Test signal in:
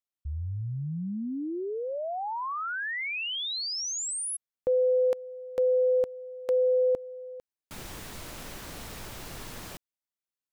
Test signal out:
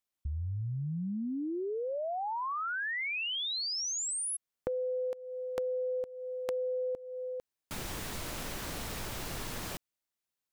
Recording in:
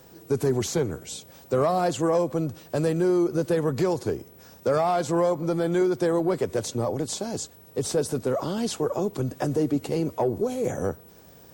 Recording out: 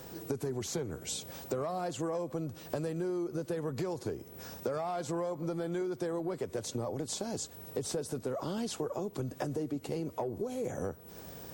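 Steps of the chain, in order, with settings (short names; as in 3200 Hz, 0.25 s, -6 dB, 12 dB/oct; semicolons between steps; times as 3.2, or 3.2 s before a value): compressor 6:1, threshold -37 dBFS; gain +3.5 dB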